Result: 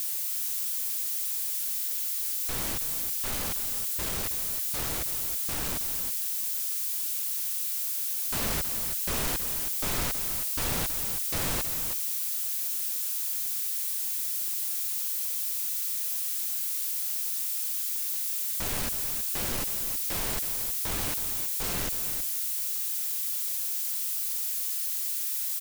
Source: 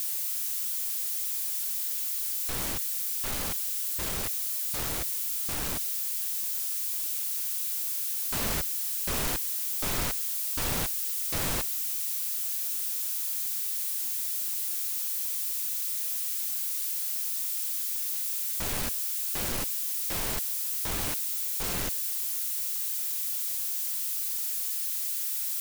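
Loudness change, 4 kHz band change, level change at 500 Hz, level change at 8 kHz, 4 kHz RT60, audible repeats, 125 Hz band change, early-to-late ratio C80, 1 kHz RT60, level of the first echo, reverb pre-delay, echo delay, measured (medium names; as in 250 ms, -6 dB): +0.5 dB, +0.5 dB, +0.5 dB, +0.5 dB, no reverb, 1, +0.5 dB, no reverb, no reverb, -9.5 dB, no reverb, 321 ms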